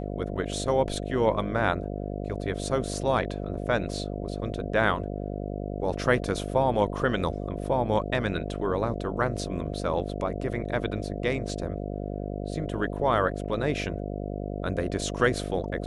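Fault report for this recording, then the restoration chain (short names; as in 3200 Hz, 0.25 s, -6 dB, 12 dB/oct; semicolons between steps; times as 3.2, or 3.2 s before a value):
buzz 50 Hz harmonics 14 -33 dBFS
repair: de-hum 50 Hz, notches 14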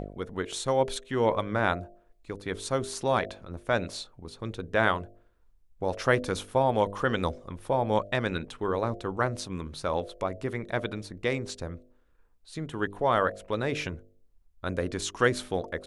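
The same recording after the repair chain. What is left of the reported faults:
none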